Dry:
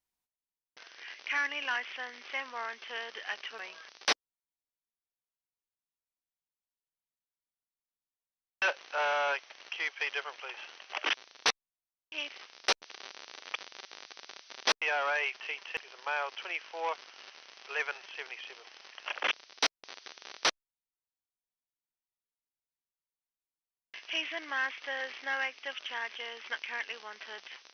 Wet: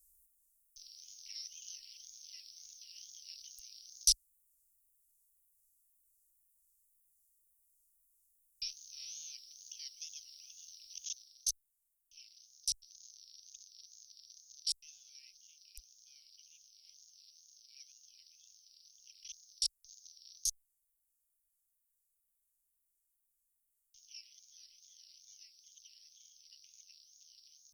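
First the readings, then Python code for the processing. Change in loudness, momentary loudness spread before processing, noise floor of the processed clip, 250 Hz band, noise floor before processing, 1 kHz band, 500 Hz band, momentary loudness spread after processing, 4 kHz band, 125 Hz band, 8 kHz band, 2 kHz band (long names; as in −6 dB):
−5.5 dB, 16 LU, −82 dBFS, below −40 dB, below −85 dBFS, below −40 dB, below −40 dB, 22 LU, −6.5 dB, can't be measured, +5.0 dB, −35.5 dB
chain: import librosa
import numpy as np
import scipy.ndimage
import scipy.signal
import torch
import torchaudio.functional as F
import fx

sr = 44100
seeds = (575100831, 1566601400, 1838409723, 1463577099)

p1 = scipy.signal.sosfilt(scipy.signal.cheby2(4, 80, [260.0, 1800.0], 'bandstop', fs=sr, output='sos'), x)
p2 = fx.rider(p1, sr, range_db=10, speed_s=0.5)
p3 = p1 + F.gain(torch.from_numpy(p2), 3.0).numpy()
p4 = fx.wow_flutter(p3, sr, seeds[0], rate_hz=2.1, depth_cents=140.0)
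y = F.gain(torch.from_numpy(p4), 9.5).numpy()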